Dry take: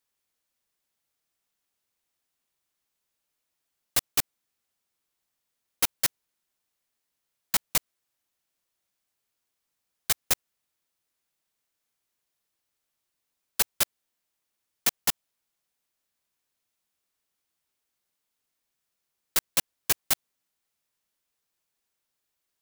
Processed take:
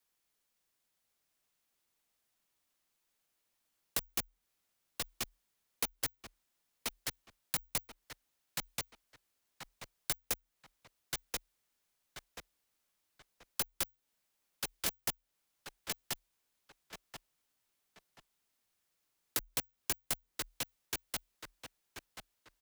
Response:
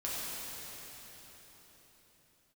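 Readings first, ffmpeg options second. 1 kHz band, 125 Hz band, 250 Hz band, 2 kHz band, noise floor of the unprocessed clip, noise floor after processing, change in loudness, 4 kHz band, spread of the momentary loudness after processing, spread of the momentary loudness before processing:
-7.0 dB, -4.0 dB, -4.5 dB, -7.0 dB, -82 dBFS, -82 dBFS, -12.0 dB, -7.5 dB, 19 LU, 3 LU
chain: -filter_complex "[0:a]asplit=2[s0][s1];[s1]adelay=1032,lowpass=f=4600:p=1,volume=0.501,asplit=2[s2][s3];[s3]adelay=1032,lowpass=f=4600:p=1,volume=0.27,asplit=2[s4][s5];[s5]adelay=1032,lowpass=f=4600:p=1,volume=0.27[s6];[s0][s2][s4][s6]amix=inputs=4:normalize=0,afreqshift=-40,acrossover=split=520|2300[s7][s8][s9];[s7]acompressor=threshold=0.00562:ratio=4[s10];[s8]acompressor=threshold=0.00501:ratio=4[s11];[s9]acompressor=threshold=0.0178:ratio=4[s12];[s10][s11][s12]amix=inputs=3:normalize=0"

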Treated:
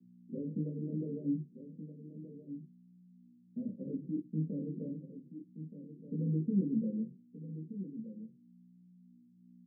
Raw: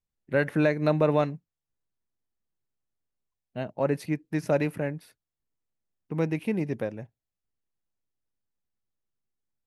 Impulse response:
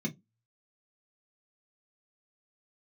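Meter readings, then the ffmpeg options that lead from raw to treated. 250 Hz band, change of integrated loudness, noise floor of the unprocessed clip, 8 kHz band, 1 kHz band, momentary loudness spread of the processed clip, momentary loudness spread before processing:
-4.5 dB, -11.0 dB, under -85 dBFS, under -25 dB, under -40 dB, 16 LU, 13 LU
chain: -filter_complex "[0:a]equalizer=f=160:t=o:w=2.6:g=-10,aecho=1:1:4.2:0.45,alimiter=limit=0.0631:level=0:latency=1:release=28,asoftclip=type=tanh:threshold=0.0237,flanger=delay=2.7:depth=8.8:regen=86:speed=1.2:shape=triangular,aeval=exprs='val(0)+0.000631*(sin(2*PI*60*n/s)+sin(2*PI*2*60*n/s)/2+sin(2*PI*3*60*n/s)/3+sin(2*PI*4*60*n/s)/4+sin(2*PI*5*60*n/s)/5)':c=same,flanger=delay=15.5:depth=7.1:speed=0.51,asuperpass=centerf=240:order=20:qfactor=0.58,asplit=2[s0][s1];[s1]adelay=1224,volume=0.282,highshelf=f=4000:g=-27.6[s2];[s0][s2]amix=inputs=2:normalize=0[s3];[1:a]atrim=start_sample=2205[s4];[s3][s4]afir=irnorm=-1:irlink=0"

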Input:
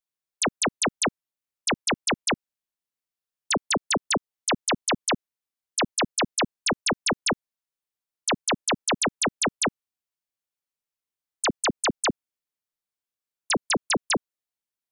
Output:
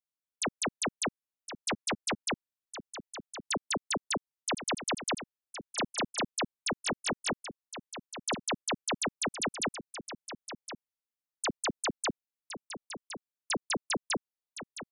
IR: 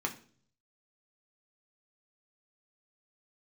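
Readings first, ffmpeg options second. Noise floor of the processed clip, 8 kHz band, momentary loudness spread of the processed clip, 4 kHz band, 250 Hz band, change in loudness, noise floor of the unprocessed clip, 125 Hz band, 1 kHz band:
under -85 dBFS, -7.5 dB, 14 LU, -7.5 dB, -7.5 dB, -9.0 dB, under -85 dBFS, -7.5 dB, -7.5 dB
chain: -af "aecho=1:1:1064:0.282,volume=0.398"

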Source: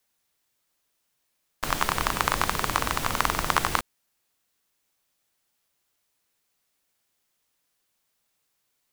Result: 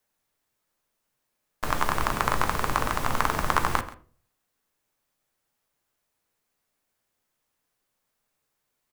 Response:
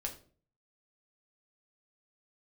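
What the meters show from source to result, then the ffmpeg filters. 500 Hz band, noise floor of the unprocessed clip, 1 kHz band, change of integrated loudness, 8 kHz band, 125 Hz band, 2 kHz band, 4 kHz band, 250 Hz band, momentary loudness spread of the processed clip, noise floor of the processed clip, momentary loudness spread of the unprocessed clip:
+1.5 dB, -76 dBFS, +0.5 dB, -0.5 dB, -5.0 dB, +2.0 dB, -1.0 dB, -5.0 dB, +1.0 dB, 6 LU, -79 dBFS, 5 LU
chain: -filter_complex "[0:a]aecho=1:1:134:0.133,asplit=2[s0][s1];[1:a]atrim=start_sample=2205,lowpass=2200[s2];[s1][s2]afir=irnorm=-1:irlink=0,volume=1.06[s3];[s0][s3]amix=inputs=2:normalize=0,volume=0.596"

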